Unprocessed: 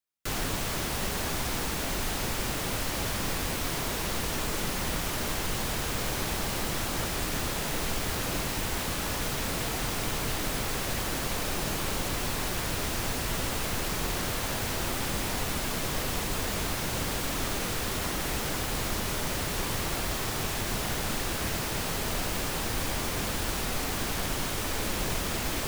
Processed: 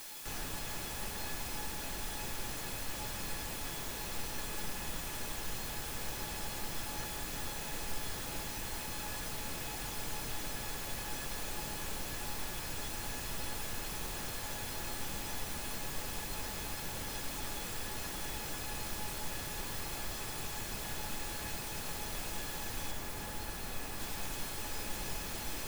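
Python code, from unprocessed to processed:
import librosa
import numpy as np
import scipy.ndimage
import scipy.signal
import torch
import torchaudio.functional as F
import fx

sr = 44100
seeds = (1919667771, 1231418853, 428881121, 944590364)

y = fx.high_shelf(x, sr, hz=4000.0, db=-10.0, at=(22.91, 24.0))
y = fx.quant_dither(y, sr, seeds[0], bits=6, dither='triangular')
y = fx.comb_fb(y, sr, f0_hz=850.0, decay_s=0.18, harmonics='all', damping=0.0, mix_pct=80)
y = F.gain(torch.from_numpy(y), 1.0).numpy()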